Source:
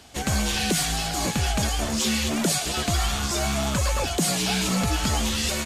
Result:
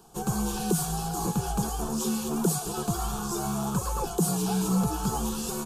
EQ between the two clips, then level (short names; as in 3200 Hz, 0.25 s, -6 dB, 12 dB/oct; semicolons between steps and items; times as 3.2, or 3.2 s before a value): bell 80 Hz -6.5 dB 0.77 oct; bell 3800 Hz -14 dB 2.3 oct; fixed phaser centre 400 Hz, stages 8; +2.5 dB